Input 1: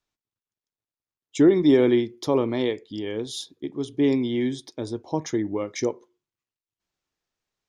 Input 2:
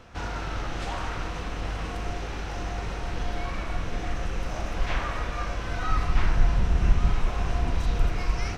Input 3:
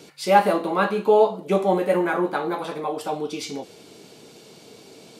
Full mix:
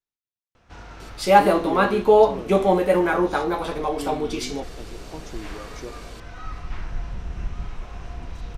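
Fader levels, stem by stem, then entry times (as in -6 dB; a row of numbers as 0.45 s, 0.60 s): -12.5 dB, -9.0 dB, +2.0 dB; 0.00 s, 0.55 s, 1.00 s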